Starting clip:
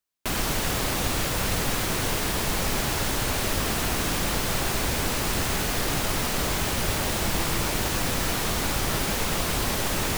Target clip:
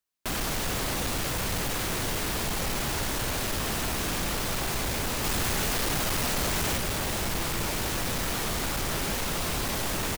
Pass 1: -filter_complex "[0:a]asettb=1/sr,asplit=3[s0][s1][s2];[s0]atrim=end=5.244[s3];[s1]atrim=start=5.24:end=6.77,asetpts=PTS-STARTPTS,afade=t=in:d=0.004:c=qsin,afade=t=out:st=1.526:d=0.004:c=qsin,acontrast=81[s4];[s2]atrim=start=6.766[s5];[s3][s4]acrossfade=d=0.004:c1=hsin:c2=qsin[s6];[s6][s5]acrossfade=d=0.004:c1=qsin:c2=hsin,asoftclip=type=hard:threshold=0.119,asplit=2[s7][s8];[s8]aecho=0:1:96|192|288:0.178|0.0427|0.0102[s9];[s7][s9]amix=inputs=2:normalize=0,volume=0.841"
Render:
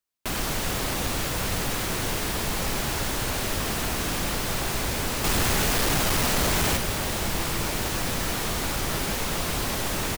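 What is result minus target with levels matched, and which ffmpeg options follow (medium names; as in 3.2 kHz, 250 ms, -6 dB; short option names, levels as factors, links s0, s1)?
hard clipper: distortion -6 dB
-filter_complex "[0:a]asettb=1/sr,asplit=3[s0][s1][s2];[s0]atrim=end=5.244[s3];[s1]atrim=start=5.24:end=6.77,asetpts=PTS-STARTPTS,afade=t=in:d=0.004:c=qsin,afade=t=out:st=1.526:d=0.004:c=qsin,acontrast=81[s4];[s2]atrim=start=6.766[s5];[s3][s4]acrossfade=d=0.004:c1=hsin:c2=qsin[s6];[s6][s5]acrossfade=d=0.004:c1=qsin:c2=hsin,asoftclip=type=hard:threshold=0.0596,asplit=2[s7][s8];[s8]aecho=0:1:96|192|288:0.178|0.0427|0.0102[s9];[s7][s9]amix=inputs=2:normalize=0,volume=0.841"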